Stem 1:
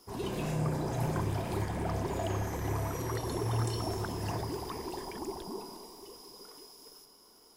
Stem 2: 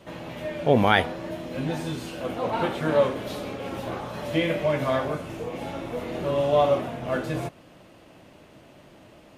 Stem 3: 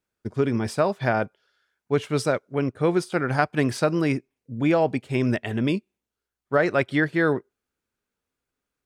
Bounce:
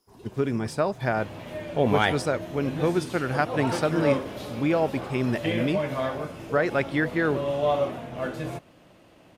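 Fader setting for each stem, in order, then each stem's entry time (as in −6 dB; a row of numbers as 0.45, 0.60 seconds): −12.5, −3.5, −3.0 decibels; 0.00, 1.10, 0.00 seconds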